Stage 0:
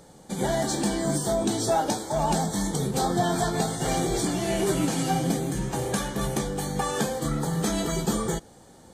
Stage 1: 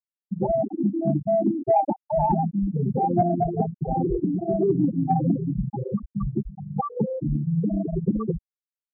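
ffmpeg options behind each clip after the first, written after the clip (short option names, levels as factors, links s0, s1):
-af "afftfilt=real='re*gte(hypot(re,im),0.251)':imag='im*gte(hypot(re,im),0.251)':win_size=1024:overlap=0.75,acontrast=78,volume=0.841"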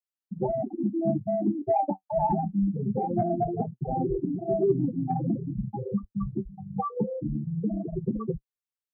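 -af "flanger=delay=7.6:depth=2.9:regen=40:speed=0.23:shape=sinusoidal"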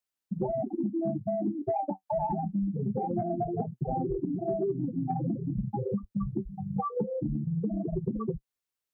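-af "acompressor=threshold=0.0251:ratio=6,volume=1.68"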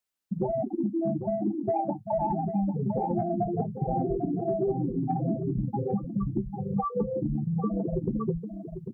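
-af "aecho=1:1:797:0.355,volume=1.26"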